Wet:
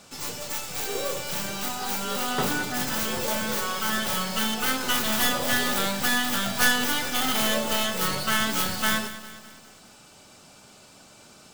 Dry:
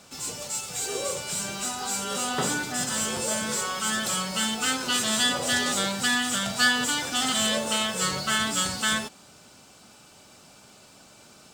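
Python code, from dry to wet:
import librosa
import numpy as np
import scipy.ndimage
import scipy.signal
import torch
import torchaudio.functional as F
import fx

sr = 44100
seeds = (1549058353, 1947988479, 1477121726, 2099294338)

y = fx.tracing_dist(x, sr, depth_ms=0.26)
y = fx.echo_crushed(y, sr, ms=202, feedback_pct=55, bits=8, wet_db=-14)
y = F.gain(torch.from_numpy(y), 1.0).numpy()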